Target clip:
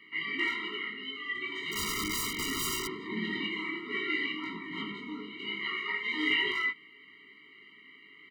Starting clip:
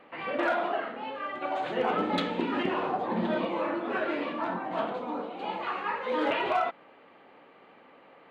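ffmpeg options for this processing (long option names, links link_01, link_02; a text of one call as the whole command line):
ffmpeg -i in.wav -filter_complex "[0:a]highshelf=frequency=1600:width_type=q:width=3:gain=10,aecho=1:1:19|29:0.668|0.335,asettb=1/sr,asplit=3[link_01][link_02][link_03];[link_01]atrim=end=1.714[link_04];[link_02]atrim=start=1.71:end=3.01,asetpts=PTS-STARTPTS,afade=type=in:duration=0.004:curve=qsin,afade=type=out:start_time=1.296:duration=0.004:curve=qsin,aeval=exprs='(mod(8.91*val(0)+1,2)-1)/8.91':channel_layout=same[link_05];[link_03]atrim=start=3.006[link_06];[link_04][link_05]acrossfade=duration=0.004:curve1=hsin:curve2=qsin[link_07];[link_07][link_06]acrossfade=duration=0.004:curve1=qsin:curve2=hsin,asettb=1/sr,asplit=3[link_08][link_09][link_10];[link_08]atrim=end=4.704[link_11];[link_09]atrim=start=4.7:end=5.78,asetpts=PTS-STARTPTS,afade=type=in:duration=0.004:curve=qsin,afade=type=out:start_time=1.076:duration=0.004:curve=qsin,bass=frequency=250:gain=5,treble=frequency=4000:gain=-4[link_12];[link_10]atrim=start=5.776[link_13];[link_11][link_12]acrossfade=duration=0.004:curve1=hsin:curve2=qsin[link_14];[link_14][link_13]acrossfade=duration=0.004:curve1=qsin:curve2=hsin,afftfilt=real='re*eq(mod(floor(b*sr/1024/460),2),0)':imag='im*eq(mod(floor(b*sr/1024/460),2),0)':win_size=1024:overlap=0.75,volume=-5.5dB" out.wav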